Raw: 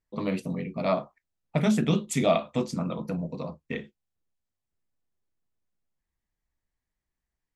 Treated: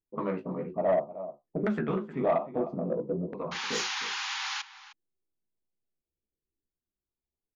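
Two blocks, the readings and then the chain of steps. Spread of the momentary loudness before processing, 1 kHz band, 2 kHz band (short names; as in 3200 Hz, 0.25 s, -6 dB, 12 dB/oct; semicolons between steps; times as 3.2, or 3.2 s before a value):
12 LU, 0.0 dB, +3.0 dB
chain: flange 1.2 Hz, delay 8.9 ms, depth 9.6 ms, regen +26%; in parallel at +1.5 dB: limiter -24 dBFS, peak gain reduction 9 dB; on the sum: LFO low-pass saw down 0.6 Hz 360–1700 Hz; painted sound noise, 3.51–4.62, 750–7100 Hz -27 dBFS; wow and flutter 17 cents; bell 370 Hz +6.5 dB 0.44 oct; low-pass opened by the level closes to 370 Hz, open at -19 dBFS; low shelf 240 Hz -9 dB; outdoor echo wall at 53 m, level -15 dB; soft clip -13.5 dBFS, distortion -19 dB; gain -4 dB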